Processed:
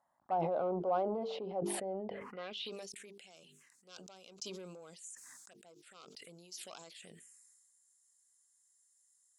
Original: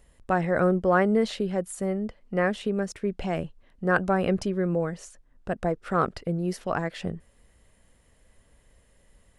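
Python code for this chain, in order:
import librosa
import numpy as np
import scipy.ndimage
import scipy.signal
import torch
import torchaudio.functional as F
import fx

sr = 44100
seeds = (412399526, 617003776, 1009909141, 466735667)

y = scipy.signal.sosfilt(scipy.signal.butter(2, 130.0, 'highpass', fs=sr, output='sos'), x)
y = fx.high_shelf(y, sr, hz=4700.0, db=6.5)
y = fx.hum_notches(y, sr, base_hz=50, count=9)
y = 10.0 ** (-18.5 / 20.0) * np.tanh(y / 10.0 ** (-18.5 / 20.0))
y = fx.env_phaser(y, sr, low_hz=440.0, high_hz=1800.0, full_db=-26.0)
y = fx.filter_sweep_bandpass(y, sr, from_hz=780.0, to_hz=7200.0, start_s=2.2, end_s=2.81, q=2.6)
y = fx.sustainer(y, sr, db_per_s=26.0)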